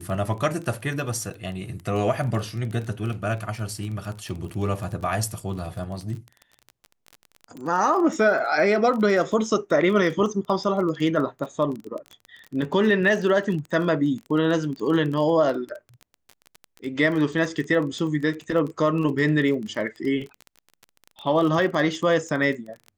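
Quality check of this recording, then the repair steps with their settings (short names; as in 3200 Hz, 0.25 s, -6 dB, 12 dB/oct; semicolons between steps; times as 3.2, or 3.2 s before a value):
crackle 22/s -30 dBFS
1.3–1.31 gap 6.6 ms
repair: de-click; interpolate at 1.3, 6.6 ms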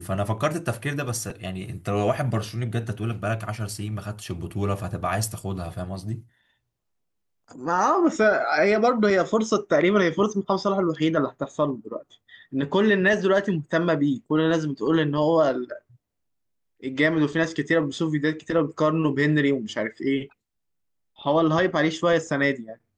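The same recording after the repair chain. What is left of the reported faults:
none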